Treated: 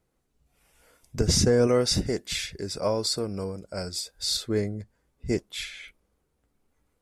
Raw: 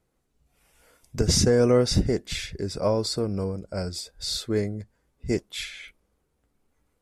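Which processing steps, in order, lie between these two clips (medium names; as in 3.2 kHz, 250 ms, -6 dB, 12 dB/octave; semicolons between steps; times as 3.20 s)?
1.67–4.37 s: tilt EQ +1.5 dB/octave; trim -1 dB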